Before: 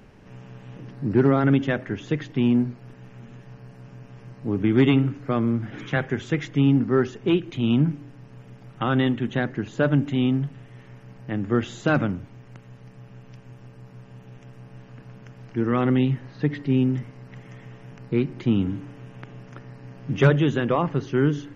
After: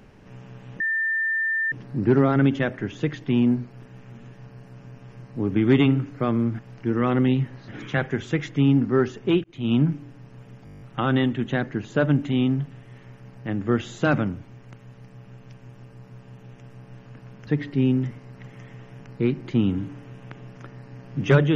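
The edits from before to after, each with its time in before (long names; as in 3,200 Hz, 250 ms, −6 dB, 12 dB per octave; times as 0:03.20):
0:00.80: insert tone 1,790 Hz −21 dBFS 0.92 s
0:07.43–0:07.73: fade in
0:08.64: stutter 0.02 s, 9 plays
0:15.30–0:16.39: move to 0:05.67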